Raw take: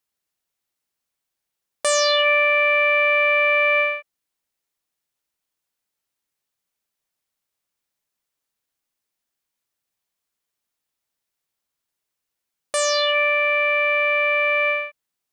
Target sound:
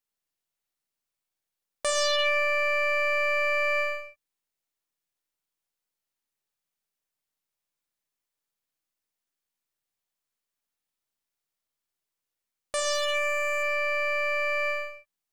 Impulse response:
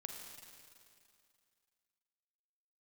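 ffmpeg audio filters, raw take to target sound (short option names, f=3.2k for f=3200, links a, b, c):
-filter_complex "[0:a]aeval=exprs='if(lt(val(0),0),0.708*val(0),val(0))':c=same,asplit=3[a][b][c];[a]afade=t=out:st=12.92:d=0.02[d];[b]highshelf=f=5.8k:t=q:w=3:g=6.5,afade=t=in:st=12.92:d=0.02,afade=t=out:st=13.62:d=0.02[e];[c]afade=t=in:st=13.62:d=0.02[f];[d][e][f]amix=inputs=3:normalize=0[g];[1:a]atrim=start_sample=2205,atrim=end_sample=6174[h];[g][h]afir=irnorm=-1:irlink=0"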